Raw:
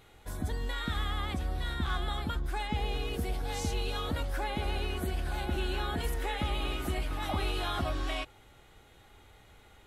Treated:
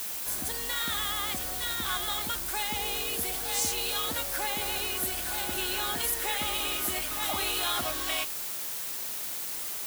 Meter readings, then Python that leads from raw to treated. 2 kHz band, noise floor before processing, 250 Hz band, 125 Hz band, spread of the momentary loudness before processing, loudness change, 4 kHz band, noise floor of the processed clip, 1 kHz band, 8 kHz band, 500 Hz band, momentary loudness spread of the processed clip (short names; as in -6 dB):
+5.0 dB, -58 dBFS, -4.0 dB, -12.0 dB, 2 LU, +5.5 dB, +8.0 dB, -35 dBFS, +2.0 dB, +17.5 dB, -0.5 dB, 5 LU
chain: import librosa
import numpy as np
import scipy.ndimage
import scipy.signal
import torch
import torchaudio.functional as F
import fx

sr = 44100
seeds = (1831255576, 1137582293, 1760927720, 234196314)

y = fx.dmg_noise_colour(x, sr, seeds[0], colour='pink', level_db=-46.0)
y = fx.riaa(y, sr, side='recording')
y = F.gain(torch.from_numpy(y), 2.0).numpy()